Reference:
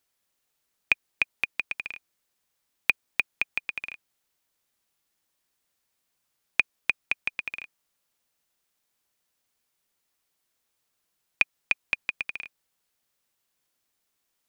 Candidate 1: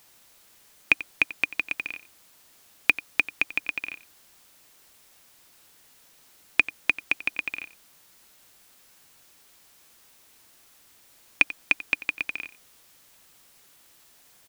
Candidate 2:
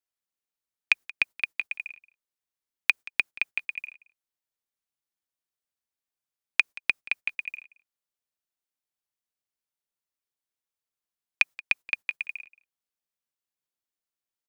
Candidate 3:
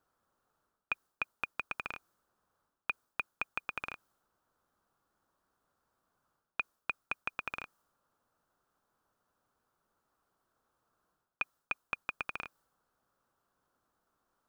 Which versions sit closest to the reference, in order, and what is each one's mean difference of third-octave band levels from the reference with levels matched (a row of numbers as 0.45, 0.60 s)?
1, 2, 3; 2.5, 5.5, 7.5 dB